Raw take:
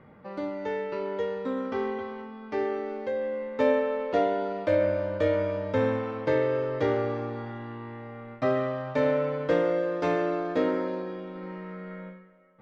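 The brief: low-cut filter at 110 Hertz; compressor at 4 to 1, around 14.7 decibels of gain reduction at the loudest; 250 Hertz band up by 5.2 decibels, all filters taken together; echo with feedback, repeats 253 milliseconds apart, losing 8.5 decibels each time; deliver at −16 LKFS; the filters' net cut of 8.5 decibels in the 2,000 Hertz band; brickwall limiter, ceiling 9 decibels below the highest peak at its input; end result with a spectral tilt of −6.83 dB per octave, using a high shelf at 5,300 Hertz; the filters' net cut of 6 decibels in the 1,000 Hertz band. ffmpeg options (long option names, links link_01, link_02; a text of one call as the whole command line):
ffmpeg -i in.wav -af "highpass=110,equalizer=frequency=250:width_type=o:gain=7,equalizer=frequency=1000:width_type=o:gain=-7.5,equalizer=frequency=2000:width_type=o:gain=-7,highshelf=frequency=5300:gain=-8,acompressor=threshold=-37dB:ratio=4,alimiter=level_in=9dB:limit=-24dB:level=0:latency=1,volume=-9dB,aecho=1:1:253|506|759|1012:0.376|0.143|0.0543|0.0206,volume=24.5dB" out.wav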